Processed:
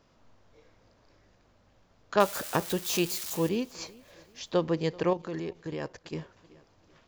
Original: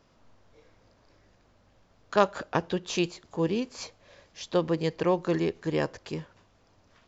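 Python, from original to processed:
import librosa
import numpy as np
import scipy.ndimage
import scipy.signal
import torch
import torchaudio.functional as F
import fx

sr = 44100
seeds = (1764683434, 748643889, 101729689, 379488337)

y = fx.crossing_spikes(x, sr, level_db=-25.0, at=(2.2, 3.49))
y = fx.echo_feedback(y, sr, ms=384, feedback_pct=40, wet_db=-23.5)
y = fx.level_steps(y, sr, step_db=11, at=(5.1, 6.15))
y = y * 10.0 ** (-1.0 / 20.0)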